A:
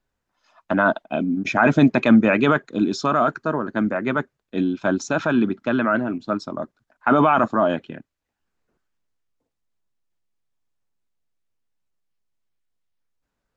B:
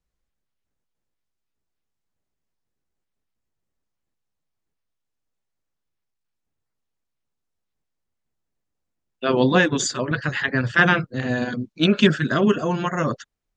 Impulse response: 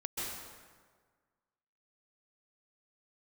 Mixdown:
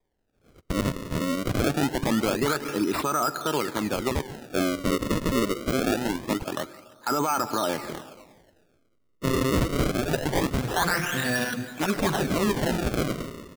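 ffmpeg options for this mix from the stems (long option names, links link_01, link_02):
-filter_complex "[0:a]highshelf=frequency=2200:gain=6.5,bandreject=frequency=5600:width=9.8,aecho=1:1:2.3:0.48,volume=-2dB,asplit=2[link_01][link_02];[link_02]volume=-18dB[link_03];[1:a]tiltshelf=frequency=1100:gain=-6,acontrast=30,volume=-4.5dB,asplit=2[link_04][link_05];[link_05]volume=-13.5dB[link_06];[2:a]atrim=start_sample=2205[link_07];[link_03][link_06]amix=inputs=2:normalize=0[link_08];[link_08][link_07]afir=irnorm=-1:irlink=0[link_09];[link_01][link_04][link_09]amix=inputs=3:normalize=0,acrusher=samples=31:mix=1:aa=0.000001:lfo=1:lforange=49.6:lforate=0.24,alimiter=limit=-16dB:level=0:latency=1:release=106"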